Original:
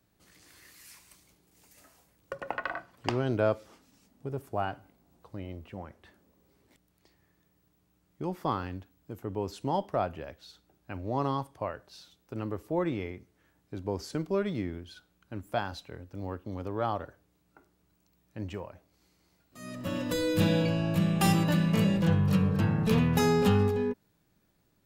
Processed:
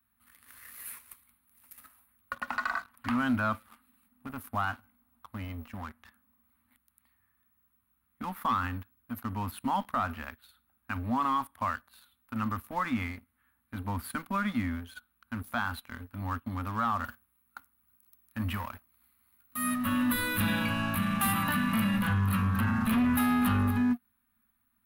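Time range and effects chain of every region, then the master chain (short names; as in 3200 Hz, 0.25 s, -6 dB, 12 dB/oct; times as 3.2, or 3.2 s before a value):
17.04–19.74 high shelf 6100 Hz +6.5 dB + sample leveller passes 1
whole clip: EQ curve 100 Hz 0 dB, 150 Hz -21 dB, 240 Hz +9 dB, 360 Hz -27 dB, 1200 Hz +9 dB, 4200 Hz -4 dB, 6000 Hz -29 dB, 10000 Hz +11 dB; sample leveller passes 2; limiter -18 dBFS; gain -3 dB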